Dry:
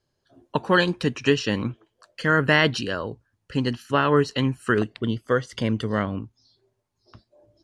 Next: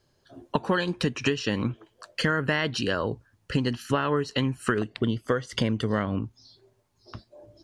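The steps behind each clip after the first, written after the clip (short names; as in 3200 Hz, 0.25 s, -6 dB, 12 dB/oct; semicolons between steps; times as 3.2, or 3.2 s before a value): compressor 10:1, threshold -29 dBFS, peak gain reduction 16 dB; gain +7.5 dB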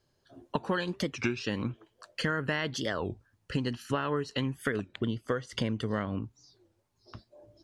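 record warp 33 1/3 rpm, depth 250 cents; gain -5.5 dB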